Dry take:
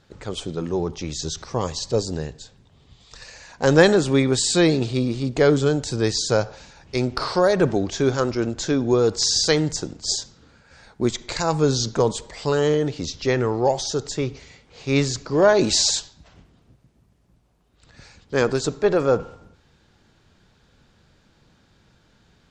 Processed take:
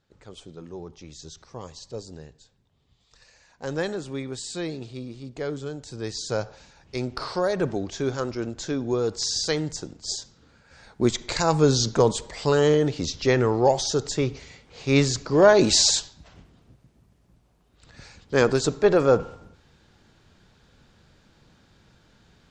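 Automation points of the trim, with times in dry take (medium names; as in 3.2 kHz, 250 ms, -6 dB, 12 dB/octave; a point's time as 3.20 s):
5.77 s -14 dB
6.42 s -6.5 dB
10.19 s -6.5 dB
11.09 s +0.5 dB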